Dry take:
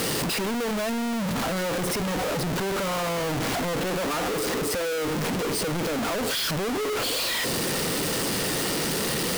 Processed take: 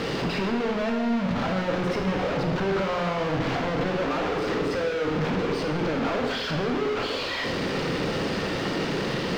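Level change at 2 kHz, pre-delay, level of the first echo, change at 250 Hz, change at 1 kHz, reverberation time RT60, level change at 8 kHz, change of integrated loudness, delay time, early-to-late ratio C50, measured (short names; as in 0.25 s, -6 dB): 0.0 dB, 18 ms, none, +2.0 dB, +0.5 dB, 1.2 s, -16.5 dB, -0.5 dB, none, 5.0 dB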